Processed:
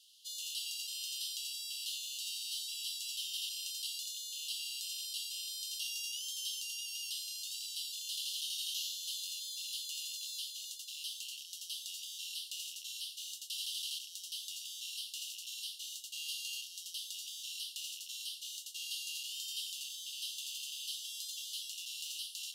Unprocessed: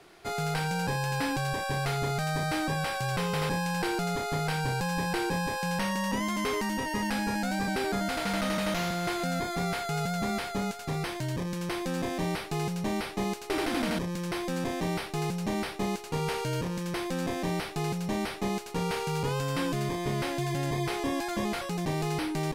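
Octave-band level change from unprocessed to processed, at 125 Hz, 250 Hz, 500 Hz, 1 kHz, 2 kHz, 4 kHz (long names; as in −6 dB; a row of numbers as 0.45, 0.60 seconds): below −40 dB, below −40 dB, below −40 dB, below −40 dB, −17.0 dB, +1.0 dB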